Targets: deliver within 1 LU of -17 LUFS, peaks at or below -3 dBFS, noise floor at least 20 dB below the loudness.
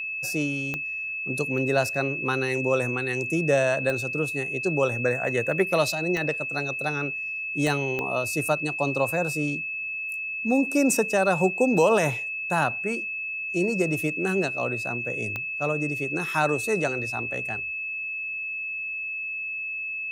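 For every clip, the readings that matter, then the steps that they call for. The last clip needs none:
clicks found 6; steady tone 2.6 kHz; tone level -29 dBFS; loudness -25.5 LUFS; peak level -9.5 dBFS; loudness target -17.0 LUFS
-> de-click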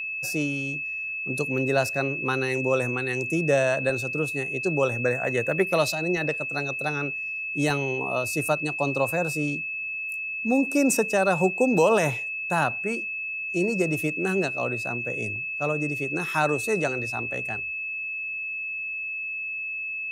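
clicks found 0; steady tone 2.6 kHz; tone level -29 dBFS
-> band-stop 2.6 kHz, Q 30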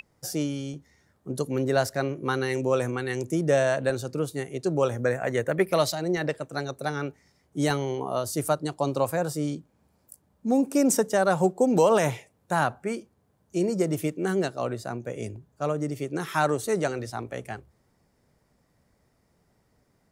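steady tone not found; loudness -27.0 LUFS; peak level -10.0 dBFS; loudness target -17.0 LUFS
-> trim +10 dB; peak limiter -3 dBFS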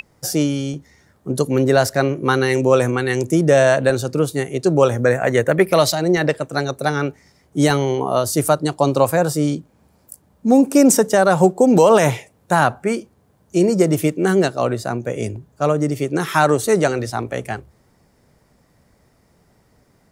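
loudness -17.5 LUFS; peak level -3.0 dBFS; noise floor -59 dBFS

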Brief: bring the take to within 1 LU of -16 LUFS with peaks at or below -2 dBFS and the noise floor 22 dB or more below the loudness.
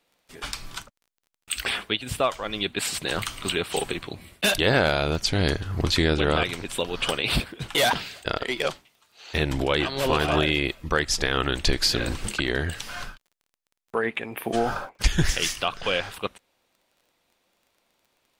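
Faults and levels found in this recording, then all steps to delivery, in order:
tick rate 20 per s; loudness -25.5 LUFS; peak level -8.5 dBFS; loudness target -16.0 LUFS
-> de-click; trim +9.5 dB; peak limiter -2 dBFS

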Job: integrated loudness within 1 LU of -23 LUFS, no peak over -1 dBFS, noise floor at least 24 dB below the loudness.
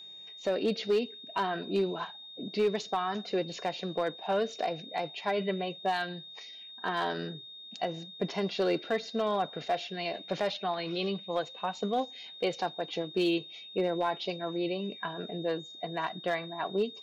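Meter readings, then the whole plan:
clipped samples 0.3%; clipping level -21.0 dBFS; steady tone 3.7 kHz; tone level -45 dBFS; loudness -33.0 LUFS; peak level -21.0 dBFS; loudness target -23.0 LUFS
-> clip repair -21 dBFS; band-stop 3.7 kHz, Q 30; trim +10 dB

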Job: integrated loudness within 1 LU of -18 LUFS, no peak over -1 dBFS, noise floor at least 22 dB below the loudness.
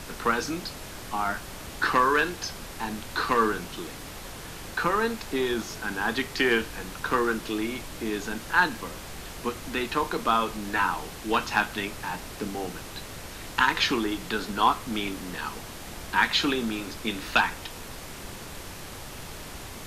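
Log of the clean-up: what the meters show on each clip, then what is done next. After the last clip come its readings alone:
noise floor -41 dBFS; noise floor target -50 dBFS; loudness -27.5 LUFS; peak level -6.0 dBFS; loudness target -18.0 LUFS
-> noise print and reduce 9 dB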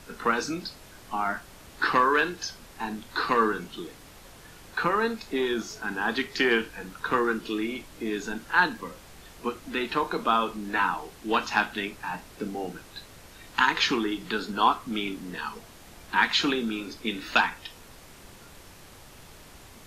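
noise floor -49 dBFS; noise floor target -50 dBFS
-> noise print and reduce 6 dB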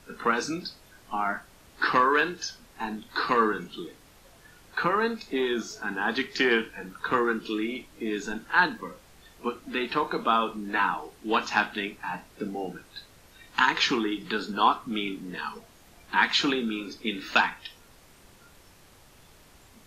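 noise floor -55 dBFS; loudness -27.5 LUFS; peak level -6.0 dBFS; loudness target -18.0 LUFS
-> trim +9.5 dB; peak limiter -1 dBFS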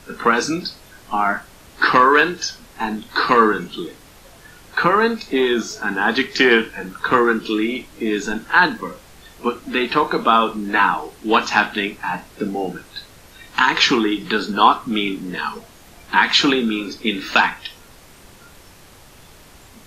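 loudness -18.5 LUFS; peak level -1.0 dBFS; noise floor -46 dBFS

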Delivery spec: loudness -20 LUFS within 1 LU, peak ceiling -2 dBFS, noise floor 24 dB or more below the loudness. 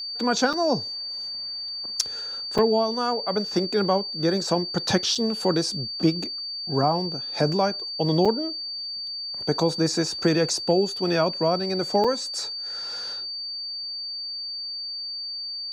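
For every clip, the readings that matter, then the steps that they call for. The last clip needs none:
dropouts 5; longest dropout 5.5 ms; steady tone 4.6 kHz; tone level -30 dBFS; loudness -25.0 LUFS; peak level -7.0 dBFS; loudness target -20.0 LUFS
-> interpolate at 0.53/2.58/5.15/8.25/12.04 s, 5.5 ms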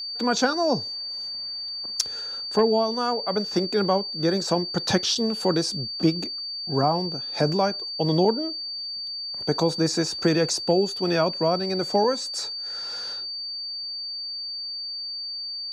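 dropouts 0; steady tone 4.6 kHz; tone level -30 dBFS
-> band-stop 4.6 kHz, Q 30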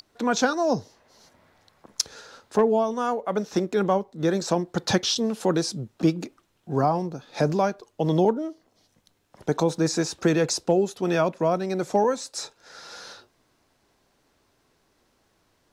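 steady tone not found; loudness -25.0 LUFS; peak level -8.0 dBFS; loudness target -20.0 LUFS
-> trim +5 dB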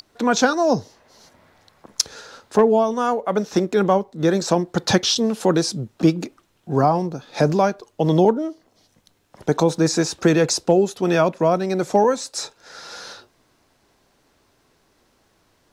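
loudness -20.0 LUFS; peak level -3.0 dBFS; noise floor -63 dBFS

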